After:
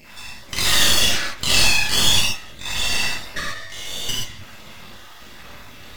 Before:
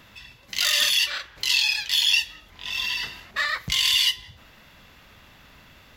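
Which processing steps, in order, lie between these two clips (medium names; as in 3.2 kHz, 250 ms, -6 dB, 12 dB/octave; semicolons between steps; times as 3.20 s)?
random holes in the spectrogram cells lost 37%; in parallel at +1 dB: compression, threshold -38 dBFS, peak gain reduction 19 dB; 3.40–4.09 s: on the sum: feedback comb 94 Hz, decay 1.2 s, harmonics all, mix 90%; half-wave rectifier; gated-style reverb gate 150 ms flat, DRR -5.5 dB; trim +3.5 dB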